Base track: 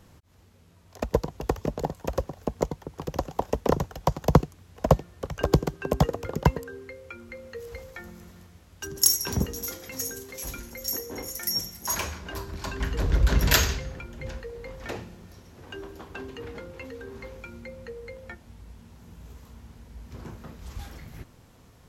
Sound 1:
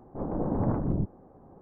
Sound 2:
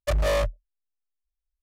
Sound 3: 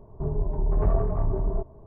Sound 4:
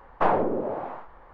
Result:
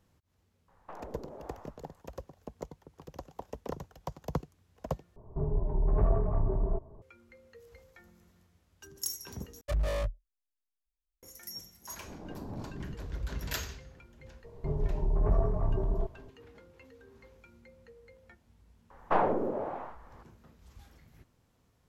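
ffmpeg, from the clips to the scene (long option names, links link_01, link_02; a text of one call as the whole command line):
ffmpeg -i bed.wav -i cue0.wav -i cue1.wav -i cue2.wav -i cue3.wav -filter_complex "[4:a]asplit=2[link_01][link_02];[3:a]asplit=2[link_03][link_04];[0:a]volume=-15.5dB[link_05];[link_01]acompressor=threshold=-26dB:ratio=6:attack=3.2:release=140:knee=1:detection=peak[link_06];[2:a]lowshelf=frequency=280:gain=7[link_07];[1:a]bandreject=frequency=520:width=12[link_08];[link_05]asplit=3[link_09][link_10][link_11];[link_09]atrim=end=5.164[link_12];[link_03]atrim=end=1.86,asetpts=PTS-STARTPTS,volume=-3.5dB[link_13];[link_10]atrim=start=7.016:end=9.614[link_14];[link_07]atrim=end=1.62,asetpts=PTS-STARTPTS,volume=-12dB[link_15];[link_11]atrim=start=11.226[link_16];[link_06]atrim=end=1.33,asetpts=PTS-STARTPTS,volume=-15.5dB,afade=type=in:duration=0.004:curve=hsin,afade=type=out:start_time=1.326:duration=0.004:curve=hsin,adelay=680[link_17];[link_08]atrim=end=1.61,asetpts=PTS-STARTPTS,volume=-14dB,afade=type=in:duration=0.004:curve=hsin,afade=type=out:start_time=1.606:duration=0.004:curve=hsin,adelay=11900[link_18];[link_04]atrim=end=1.86,asetpts=PTS-STARTPTS,volume=-4dB,afade=type=in:duration=0.004:curve=hsin,afade=type=out:start_time=1.856:duration=0.004:curve=hsin,adelay=636804S[link_19];[link_02]atrim=end=1.33,asetpts=PTS-STARTPTS,volume=-4.5dB,afade=type=in:duration=0.004:curve=hsin,afade=type=out:start_time=1.326:duration=0.004:curve=hsin,adelay=18900[link_20];[link_12][link_13]acrossfade=duration=0.004:curve1=hsin:curve2=hsin[link_21];[link_21][link_14]acrossfade=duration=0.004:curve1=hsin:curve2=hsin[link_22];[link_22][link_15]acrossfade=duration=0.004:curve1=hsin:curve2=hsin[link_23];[link_23][link_16]acrossfade=duration=0.004:curve1=hsin:curve2=hsin[link_24];[link_24][link_17][link_18][link_19][link_20]amix=inputs=5:normalize=0" out.wav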